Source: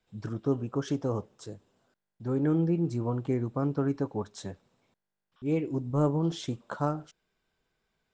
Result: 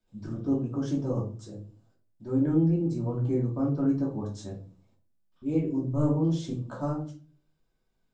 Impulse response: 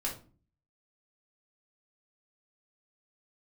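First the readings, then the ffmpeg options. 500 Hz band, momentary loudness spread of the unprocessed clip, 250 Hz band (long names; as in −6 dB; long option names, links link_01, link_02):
−1.5 dB, 14 LU, +3.0 dB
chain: -filter_complex "[0:a]equalizer=frequency=1900:width_type=o:width=2.1:gain=-8[link_01];[1:a]atrim=start_sample=2205[link_02];[link_01][link_02]afir=irnorm=-1:irlink=0,volume=-2.5dB"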